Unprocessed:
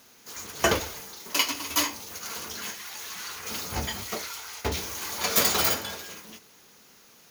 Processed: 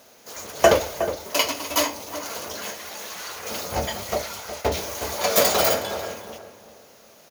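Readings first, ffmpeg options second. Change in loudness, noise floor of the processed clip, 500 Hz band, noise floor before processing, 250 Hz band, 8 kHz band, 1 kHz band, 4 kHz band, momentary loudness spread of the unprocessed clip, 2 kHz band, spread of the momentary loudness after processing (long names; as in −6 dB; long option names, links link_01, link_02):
+4.0 dB, −52 dBFS, +11.5 dB, −55 dBFS, +3.5 dB, +1.5 dB, +6.5 dB, +1.5 dB, 16 LU, +2.5 dB, 16 LU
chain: -filter_complex "[0:a]equalizer=frequency=600:width=1.9:gain=13,asplit=2[link_01][link_02];[link_02]adelay=364,lowpass=frequency=1300:poles=1,volume=-9dB,asplit=2[link_03][link_04];[link_04]adelay=364,lowpass=frequency=1300:poles=1,volume=0.33,asplit=2[link_05][link_06];[link_06]adelay=364,lowpass=frequency=1300:poles=1,volume=0.33,asplit=2[link_07][link_08];[link_08]adelay=364,lowpass=frequency=1300:poles=1,volume=0.33[link_09];[link_03][link_05][link_07][link_09]amix=inputs=4:normalize=0[link_10];[link_01][link_10]amix=inputs=2:normalize=0,volume=1.5dB"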